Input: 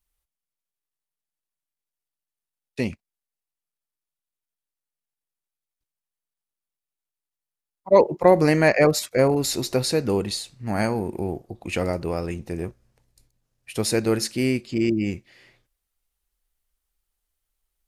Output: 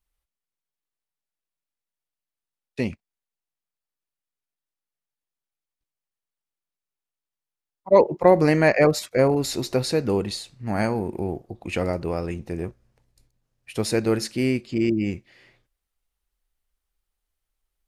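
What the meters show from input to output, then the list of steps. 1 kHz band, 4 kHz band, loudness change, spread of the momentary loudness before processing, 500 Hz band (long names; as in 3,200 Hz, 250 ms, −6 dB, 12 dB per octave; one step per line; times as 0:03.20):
0.0 dB, −2.5 dB, −0.5 dB, 14 LU, 0.0 dB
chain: high-shelf EQ 5,200 Hz −6.5 dB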